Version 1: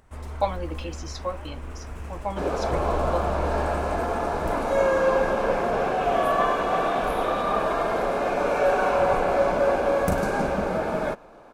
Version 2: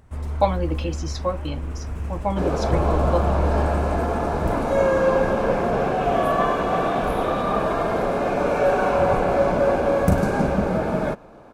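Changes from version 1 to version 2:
speech +3.5 dB; master: add bell 110 Hz +9.5 dB 3 oct

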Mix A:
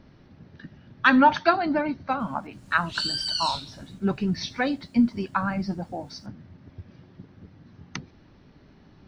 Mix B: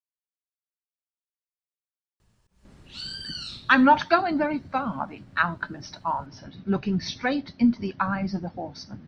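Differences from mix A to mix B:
speech: entry +2.65 s; background: add high shelf 3000 Hz -11.5 dB

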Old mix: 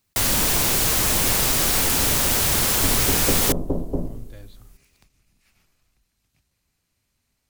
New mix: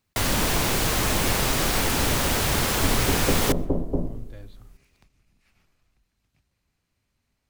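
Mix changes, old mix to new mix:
first sound: send on; master: add high shelf 4800 Hz -10.5 dB

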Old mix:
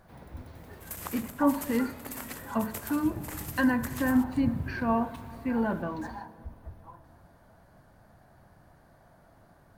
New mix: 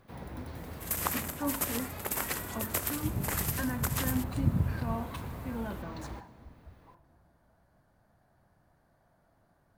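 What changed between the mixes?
speech -10.0 dB; first sound +6.0 dB; second sound +7.5 dB

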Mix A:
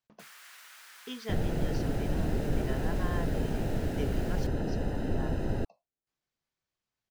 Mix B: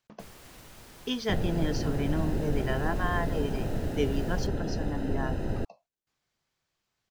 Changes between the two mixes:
speech +9.5 dB; first sound: remove resonant high-pass 1500 Hz, resonance Q 1.8

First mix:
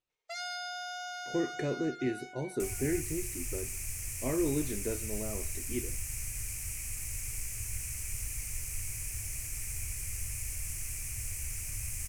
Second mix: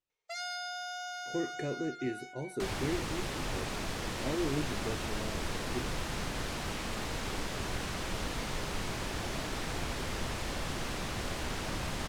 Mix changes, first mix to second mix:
speech -3.0 dB; second sound: remove EQ curve 110 Hz 0 dB, 180 Hz -21 dB, 940 Hz -25 dB, 1600 Hz -18 dB, 2400 Hz -1 dB, 3600 Hz -25 dB, 6000 Hz +3 dB, 9200 Hz +13 dB

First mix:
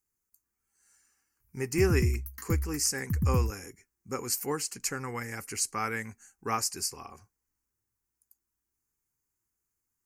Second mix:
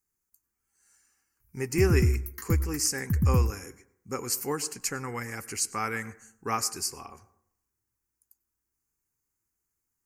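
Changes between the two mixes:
background +3.0 dB; reverb: on, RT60 0.65 s

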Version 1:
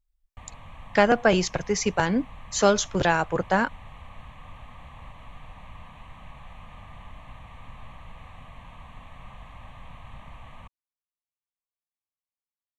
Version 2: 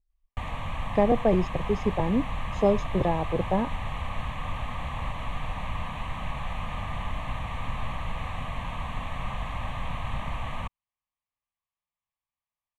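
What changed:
speech: add running mean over 30 samples; background +12.0 dB

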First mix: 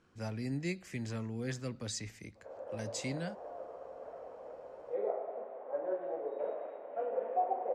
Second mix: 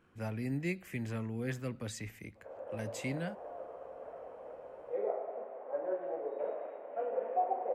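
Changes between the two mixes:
speech: remove Chebyshev low-pass 6300 Hz, order 2; master: add resonant high shelf 3600 Hz -6.5 dB, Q 1.5

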